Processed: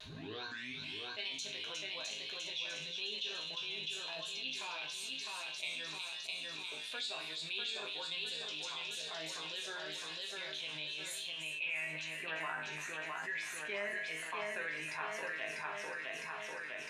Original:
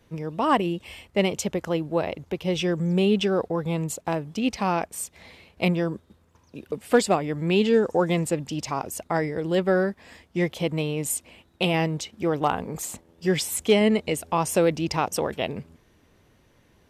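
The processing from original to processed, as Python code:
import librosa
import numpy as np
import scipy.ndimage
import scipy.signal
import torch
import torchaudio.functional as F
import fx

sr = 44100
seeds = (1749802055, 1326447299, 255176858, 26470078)

p1 = fx.tape_start_head(x, sr, length_s=0.89)
p2 = p1 + fx.echo_wet_highpass(p1, sr, ms=357, feedback_pct=54, hz=3300.0, wet_db=-5.0, dry=0)
p3 = fx.dmg_noise_colour(p2, sr, seeds[0], colour='brown', level_db=-47.0)
p4 = fx.ripple_eq(p3, sr, per_octave=1.5, db=7)
p5 = fx.echo_feedback(p4, sr, ms=653, feedback_pct=47, wet_db=-4.0)
p6 = fx.filter_sweep_bandpass(p5, sr, from_hz=3600.0, to_hz=1800.0, start_s=11.17, end_s=12.09, q=5.0)
p7 = fx.level_steps(p6, sr, step_db=20)
p8 = p6 + F.gain(torch.from_numpy(p7), -1.0).numpy()
p9 = fx.resonator_bank(p8, sr, root=44, chord='major', decay_s=0.34)
p10 = fx.vibrato(p9, sr, rate_hz=1.0, depth_cents=45.0)
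p11 = fx.env_flatten(p10, sr, amount_pct=70)
y = F.gain(torch.from_numpy(p11), 2.5).numpy()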